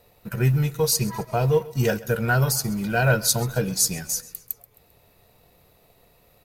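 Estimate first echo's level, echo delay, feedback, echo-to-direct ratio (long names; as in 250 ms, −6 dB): −20.0 dB, 132 ms, 45%, −19.0 dB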